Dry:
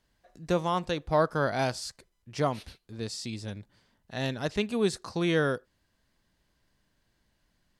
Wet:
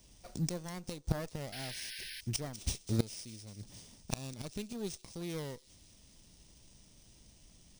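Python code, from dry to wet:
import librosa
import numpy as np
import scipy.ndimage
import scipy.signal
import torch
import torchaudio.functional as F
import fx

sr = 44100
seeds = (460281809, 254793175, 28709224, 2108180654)

y = fx.lower_of_two(x, sr, delay_ms=0.34)
y = fx.band_shelf(y, sr, hz=6900.0, db=13.0, octaves=1.7)
y = fx.gate_flip(y, sr, shuts_db=-26.0, range_db=-24)
y = fx.low_shelf(y, sr, hz=400.0, db=6.5)
y = fx.echo_wet_highpass(y, sr, ms=199, feedback_pct=68, hz=5400.0, wet_db=-10.5)
y = fx.spec_paint(y, sr, seeds[0], shape='noise', start_s=1.52, length_s=0.69, low_hz=1500.0, high_hz=5500.0, level_db=-52.0)
y = np.repeat(y[::3], 3)[:len(y)]
y = F.gain(torch.from_numpy(y), 6.5).numpy()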